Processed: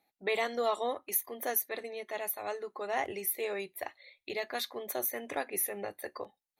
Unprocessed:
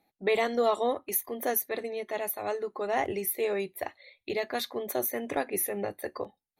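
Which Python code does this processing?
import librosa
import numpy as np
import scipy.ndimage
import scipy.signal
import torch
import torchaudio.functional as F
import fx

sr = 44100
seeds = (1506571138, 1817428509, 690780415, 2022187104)

y = fx.low_shelf(x, sr, hz=470.0, db=-9.5)
y = F.gain(torch.from_numpy(y), -1.5).numpy()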